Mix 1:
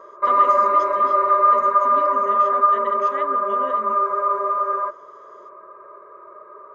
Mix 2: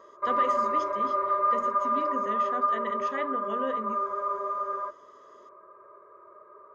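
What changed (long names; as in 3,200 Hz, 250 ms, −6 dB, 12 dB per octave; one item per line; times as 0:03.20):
background −10.0 dB
master: add low-shelf EQ 250 Hz +6.5 dB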